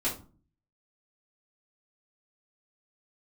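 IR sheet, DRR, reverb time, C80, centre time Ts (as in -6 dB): -9.5 dB, 0.40 s, 15.5 dB, 23 ms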